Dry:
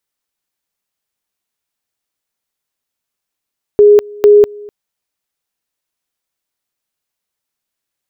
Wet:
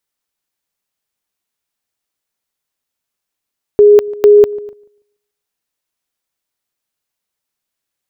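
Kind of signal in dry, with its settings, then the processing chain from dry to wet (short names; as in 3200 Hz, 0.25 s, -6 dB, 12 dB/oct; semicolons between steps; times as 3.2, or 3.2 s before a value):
two-level tone 414 Hz -2 dBFS, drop 25 dB, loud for 0.20 s, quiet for 0.25 s, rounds 2
darkening echo 0.145 s, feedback 27%, low-pass 1500 Hz, level -21 dB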